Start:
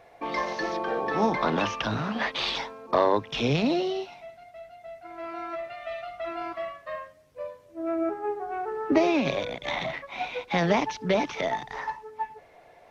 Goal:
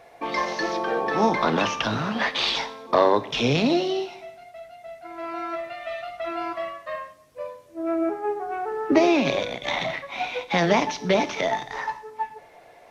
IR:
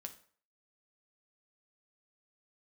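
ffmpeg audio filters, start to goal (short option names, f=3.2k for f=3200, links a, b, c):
-filter_complex "[0:a]asplit=2[a][b];[b]highpass=110[c];[1:a]atrim=start_sample=2205,asetrate=26019,aresample=44100,highshelf=f=3.9k:g=10[d];[c][d]afir=irnorm=-1:irlink=0,volume=-3.5dB[e];[a][e]amix=inputs=2:normalize=0"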